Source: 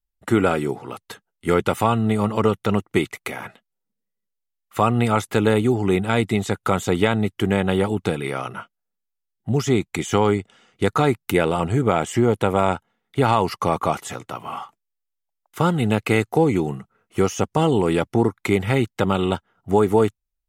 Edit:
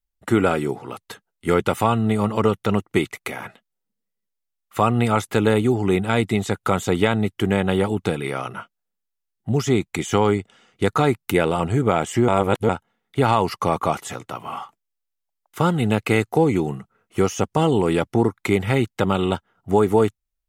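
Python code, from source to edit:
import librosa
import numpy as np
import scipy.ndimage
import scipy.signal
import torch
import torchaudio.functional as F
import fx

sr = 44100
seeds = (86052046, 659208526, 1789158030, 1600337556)

y = fx.edit(x, sr, fx.reverse_span(start_s=12.28, length_s=0.41), tone=tone)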